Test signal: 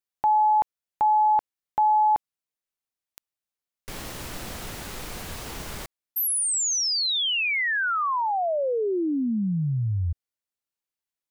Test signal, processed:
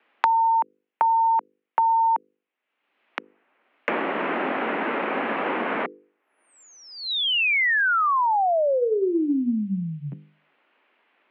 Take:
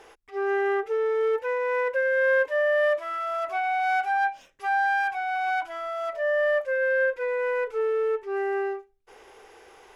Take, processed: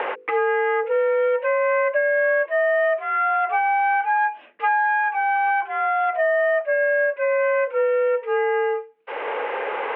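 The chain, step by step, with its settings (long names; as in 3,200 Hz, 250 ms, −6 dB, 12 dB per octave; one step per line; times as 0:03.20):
mains-hum notches 50/100/150/200/250/300/350/400/450 Hz
single-sideband voice off tune +53 Hz 180–2,700 Hz
multiband upward and downward compressor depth 100%
level +4 dB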